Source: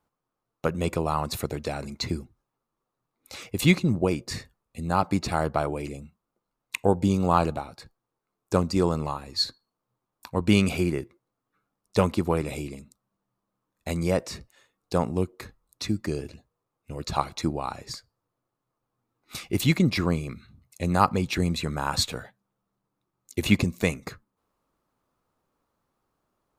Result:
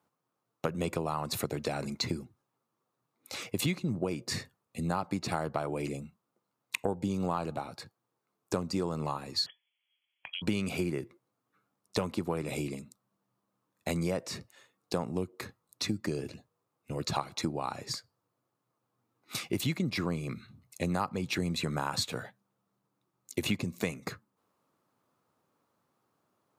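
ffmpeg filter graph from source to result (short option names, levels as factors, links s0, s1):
-filter_complex "[0:a]asettb=1/sr,asplit=3[s0][s1][s2];[s0]atrim=end=9.464[s3];[s1]atrim=start=9.46:end=10.42,asetpts=PTS-STARTPTS,afade=t=in:d=0.004:c=qsin,afade=t=out:st=0.956:d=0.004:c=qsin,lowpass=f=2900:t=q:w=0.5098,lowpass=f=2900:t=q:w=0.6013,lowpass=f=2900:t=q:w=0.9,lowpass=f=2900:t=q:w=2.563,afreqshift=-3400,acompressor=threshold=0.0178:ratio=16:attack=3.2:release=140:knee=1:detection=peak[s4];[s2]atrim=start=10.416[s5];[s3][s4]acrossfade=d=0.004:c1=hsin:c2=qsin[s6];[s6][s5]acrossfade=d=0.004:c1=qsin:c2=hsin,highpass=f=100:w=0.5412,highpass=f=100:w=1.3066,acompressor=threshold=0.0355:ratio=6,volume=1.12"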